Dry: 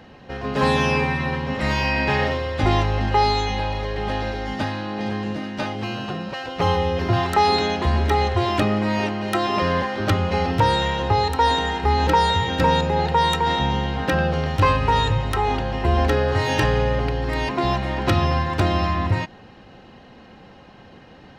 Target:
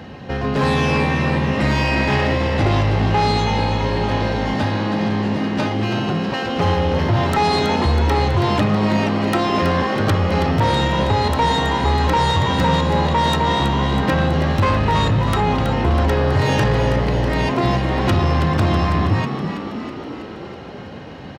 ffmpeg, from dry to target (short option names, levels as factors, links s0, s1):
-filter_complex "[0:a]highpass=88,lowshelf=f=150:g=10.5,asplit=2[s0][s1];[s1]acompressor=threshold=0.0447:ratio=6,volume=1.41[s2];[s0][s2]amix=inputs=2:normalize=0,asoftclip=type=tanh:threshold=0.251,asplit=9[s3][s4][s5][s6][s7][s8][s9][s10][s11];[s4]adelay=324,afreqshift=62,volume=0.376[s12];[s5]adelay=648,afreqshift=124,volume=0.232[s13];[s6]adelay=972,afreqshift=186,volume=0.145[s14];[s7]adelay=1296,afreqshift=248,volume=0.0891[s15];[s8]adelay=1620,afreqshift=310,volume=0.0556[s16];[s9]adelay=1944,afreqshift=372,volume=0.0343[s17];[s10]adelay=2268,afreqshift=434,volume=0.0214[s18];[s11]adelay=2592,afreqshift=496,volume=0.0132[s19];[s3][s12][s13][s14][s15][s16][s17][s18][s19]amix=inputs=9:normalize=0"